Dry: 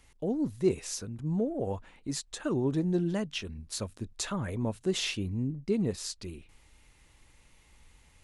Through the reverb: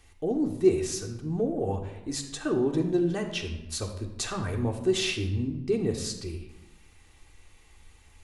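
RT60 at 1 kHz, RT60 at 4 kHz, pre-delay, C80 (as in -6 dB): 0.95 s, 0.65 s, 3 ms, 10.0 dB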